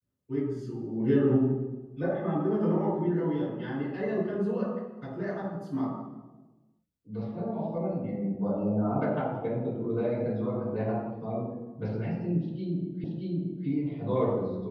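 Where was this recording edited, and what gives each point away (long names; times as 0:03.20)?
0:13.04: the same again, the last 0.63 s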